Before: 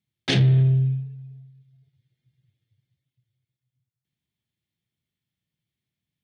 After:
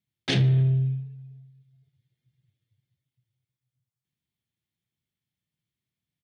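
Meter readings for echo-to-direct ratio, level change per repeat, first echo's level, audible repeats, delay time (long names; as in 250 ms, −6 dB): −23.5 dB, −8.0 dB, −24.0 dB, 2, 73 ms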